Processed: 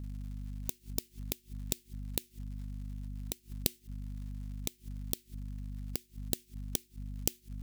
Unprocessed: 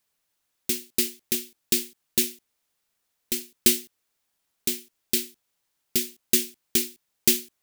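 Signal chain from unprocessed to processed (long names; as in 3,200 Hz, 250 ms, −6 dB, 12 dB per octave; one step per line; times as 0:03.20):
mains hum 50 Hz, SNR 12 dB
surface crackle 180 per second −49 dBFS
gate with flip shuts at −20 dBFS, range −33 dB
level +1 dB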